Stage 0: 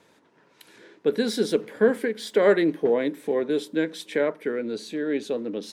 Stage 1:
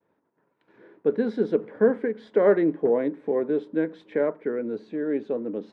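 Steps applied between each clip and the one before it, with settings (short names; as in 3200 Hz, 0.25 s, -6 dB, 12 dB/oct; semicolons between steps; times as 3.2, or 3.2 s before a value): LPF 1300 Hz 12 dB/oct; expander -53 dBFS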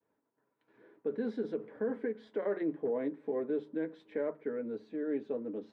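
notches 50/100/150 Hz; limiter -17 dBFS, peak gain reduction 8.5 dB; notch comb 180 Hz; gain -7.5 dB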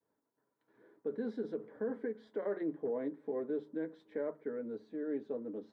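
bell 2600 Hz -8.5 dB 0.5 oct; gain -3 dB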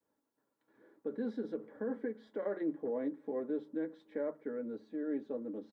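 comb 3.6 ms, depth 32%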